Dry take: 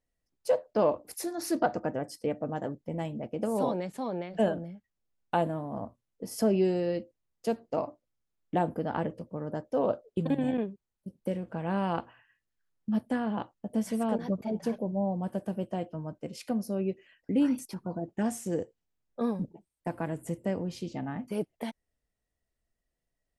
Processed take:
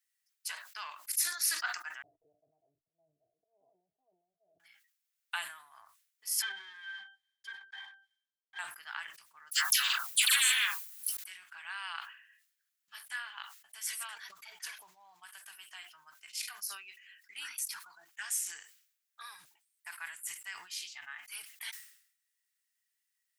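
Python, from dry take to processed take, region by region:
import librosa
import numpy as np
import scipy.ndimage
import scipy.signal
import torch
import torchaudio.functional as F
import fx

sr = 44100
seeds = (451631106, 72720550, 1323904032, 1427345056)

y = fx.chain(x, sr, fx.auto_swell(attack_ms=152.0),
    fx.cheby_ripple(hz=680.0, ripple_db=3), at=(2.02, 4.6))
y = fx.chain(y, sr, fx.leveller(passes=5),
    fx.octave_resonator(note='G', decay_s=0.13), at=(6.42, 8.59))
y = fx.chain(y, sr, fx.high_shelf(hz=8800.0, db=10.5),
    fx.dispersion(late='lows', ms=110.0, hz=1200.0),
    fx.spectral_comp(ratio=4.0), at=(9.51, 11.17))
y = scipy.signal.sosfilt(scipy.signal.cheby2(4, 50, 580.0, 'highpass', fs=sr, output='sos'), y)
y = fx.high_shelf(y, sr, hz=8400.0, db=8.5)
y = fx.sustainer(y, sr, db_per_s=89.0)
y = y * 10.0 ** (4.5 / 20.0)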